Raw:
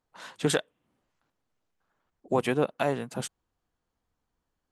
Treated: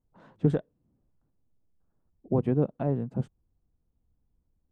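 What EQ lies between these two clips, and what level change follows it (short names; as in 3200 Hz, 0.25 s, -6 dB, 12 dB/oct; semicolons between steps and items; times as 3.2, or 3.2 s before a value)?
LPF 1300 Hz 6 dB/oct; tilt shelf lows +8.5 dB, about 840 Hz; low shelf 210 Hz +11.5 dB; -8.0 dB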